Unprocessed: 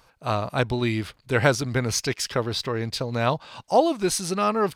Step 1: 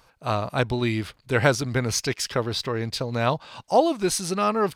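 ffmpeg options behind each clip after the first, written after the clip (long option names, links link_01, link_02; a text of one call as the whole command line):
ffmpeg -i in.wav -af anull out.wav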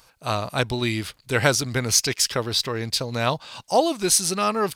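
ffmpeg -i in.wav -af "highshelf=frequency=3300:gain=11.5,volume=-1dB" out.wav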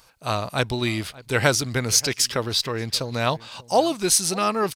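ffmpeg -i in.wav -filter_complex "[0:a]asplit=2[link_01][link_02];[link_02]adelay=583.1,volume=-20dB,highshelf=frequency=4000:gain=-13.1[link_03];[link_01][link_03]amix=inputs=2:normalize=0" out.wav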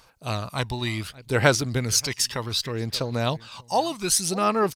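ffmpeg -i in.wav -af "aphaser=in_gain=1:out_gain=1:delay=1.1:decay=0.46:speed=0.66:type=sinusoidal,volume=-4dB" out.wav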